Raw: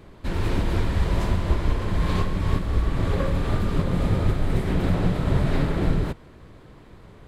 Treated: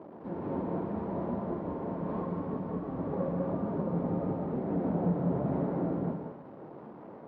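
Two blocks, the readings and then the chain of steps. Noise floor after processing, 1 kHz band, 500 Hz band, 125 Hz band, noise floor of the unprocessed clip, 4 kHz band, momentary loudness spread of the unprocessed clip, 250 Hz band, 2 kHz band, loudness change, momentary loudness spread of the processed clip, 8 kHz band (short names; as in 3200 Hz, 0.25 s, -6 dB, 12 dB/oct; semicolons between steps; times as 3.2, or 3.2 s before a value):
-48 dBFS, -6.0 dB, -3.5 dB, -12.0 dB, -48 dBFS, under -30 dB, 3 LU, -4.0 dB, -19.0 dB, -8.5 dB, 12 LU, n/a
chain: delta modulation 32 kbps, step -33 dBFS; Chebyshev band-pass 210–800 Hz, order 2; flange 0.85 Hz, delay 2.9 ms, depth 4.9 ms, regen +74%; non-linear reverb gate 0.23 s rising, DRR 2.5 dB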